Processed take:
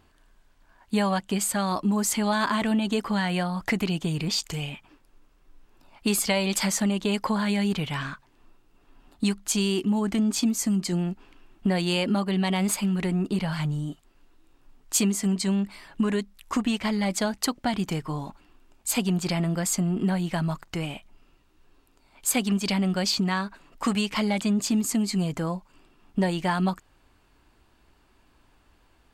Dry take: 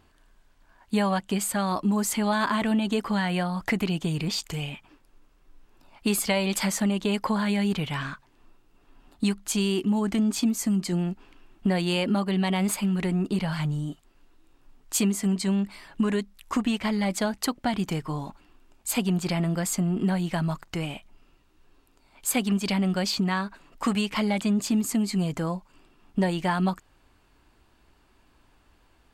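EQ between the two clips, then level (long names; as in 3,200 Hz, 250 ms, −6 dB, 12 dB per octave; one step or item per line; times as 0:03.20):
dynamic equaliser 5,900 Hz, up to +4 dB, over −42 dBFS, Q 1
0.0 dB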